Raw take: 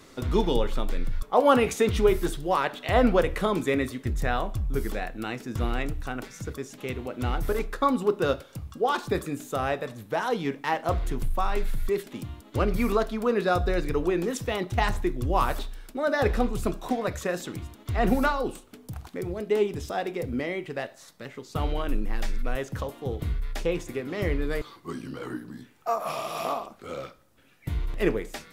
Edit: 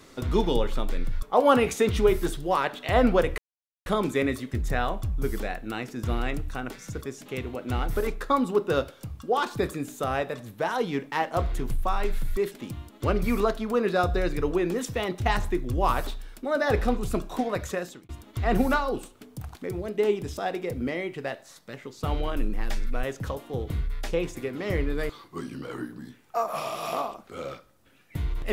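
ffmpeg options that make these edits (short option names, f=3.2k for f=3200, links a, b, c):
-filter_complex "[0:a]asplit=3[a][b][c];[a]atrim=end=3.38,asetpts=PTS-STARTPTS,afade=t=out:st=3.376:d=0.004:c=hsin,apad=pad_dur=0.48[d];[b]atrim=start=3.38:end=17.61,asetpts=PTS-STARTPTS,afade=t=in:d=0.004:c=hsin,afade=t=out:st=13.84:d=0.39[e];[c]atrim=start=17.61,asetpts=PTS-STARTPTS,afade=t=in:d=0.004:c=hsin[f];[d][e][f]concat=n=3:v=0:a=1"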